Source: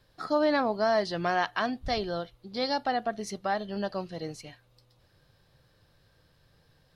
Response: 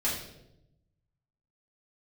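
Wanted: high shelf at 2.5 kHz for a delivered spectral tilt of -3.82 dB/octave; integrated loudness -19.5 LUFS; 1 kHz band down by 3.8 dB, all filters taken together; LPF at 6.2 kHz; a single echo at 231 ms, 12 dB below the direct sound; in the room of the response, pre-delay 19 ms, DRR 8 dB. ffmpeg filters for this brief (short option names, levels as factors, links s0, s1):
-filter_complex "[0:a]lowpass=6200,equalizer=f=1000:t=o:g=-5,highshelf=f=2500:g=-5,aecho=1:1:231:0.251,asplit=2[s0][s1];[1:a]atrim=start_sample=2205,adelay=19[s2];[s1][s2]afir=irnorm=-1:irlink=0,volume=0.168[s3];[s0][s3]amix=inputs=2:normalize=0,volume=3.76"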